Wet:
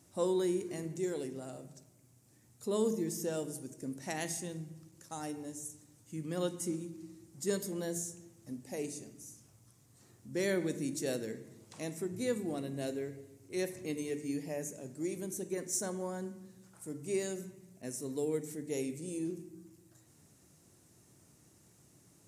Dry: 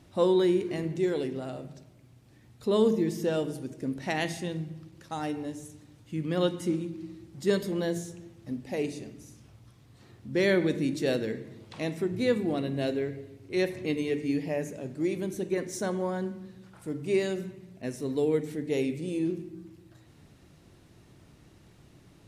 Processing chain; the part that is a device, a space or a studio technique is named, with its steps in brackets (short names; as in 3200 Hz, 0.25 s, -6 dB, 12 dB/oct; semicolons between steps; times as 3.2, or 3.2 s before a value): budget condenser microphone (HPF 90 Hz; resonant high shelf 5100 Hz +12 dB, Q 1.5); gain -8 dB